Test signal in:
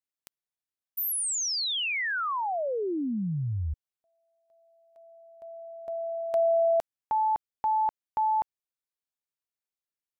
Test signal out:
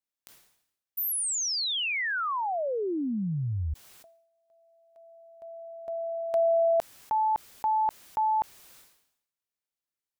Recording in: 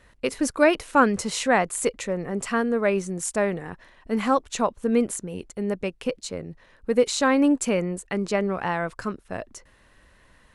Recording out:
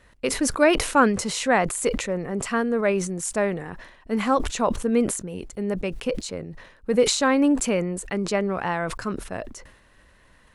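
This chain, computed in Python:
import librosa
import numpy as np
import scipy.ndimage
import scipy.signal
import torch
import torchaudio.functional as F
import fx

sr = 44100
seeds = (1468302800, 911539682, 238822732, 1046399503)

y = fx.sustainer(x, sr, db_per_s=75.0)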